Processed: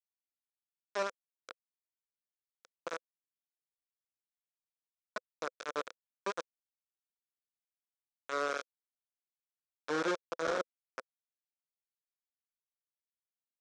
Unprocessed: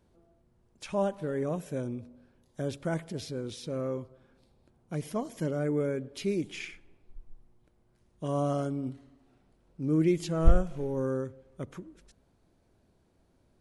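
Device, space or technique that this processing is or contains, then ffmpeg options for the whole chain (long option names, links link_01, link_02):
hand-held game console: -af "acrusher=bits=3:mix=0:aa=0.000001,highpass=480,equalizer=frequency=510:width_type=q:width=4:gain=8,equalizer=frequency=810:width_type=q:width=4:gain=-8,equalizer=frequency=1400:width_type=q:width=4:gain=5,equalizer=frequency=2000:width_type=q:width=4:gain=-6,equalizer=frequency=2900:width_type=q:width=4:gain=-9,equalizer=frequency=4500:width_type=q:width=4:gain=-7,lowpass=frequency=5800:width=0.5412,lowpass=frequency=5800:width=1.3066,volume=-5dB"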